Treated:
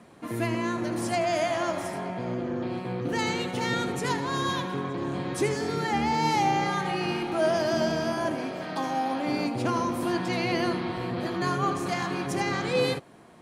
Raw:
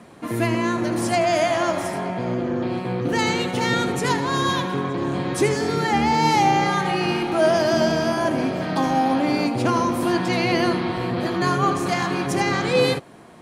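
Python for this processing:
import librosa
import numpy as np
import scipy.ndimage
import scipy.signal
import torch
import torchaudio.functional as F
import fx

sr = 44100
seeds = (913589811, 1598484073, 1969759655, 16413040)

y = fx.low_shelf(x, sr, hz=210.0, db=-11.0, at=(8.34, 9.26))
y = y * 10.0 ** (-6.5 / 20.0)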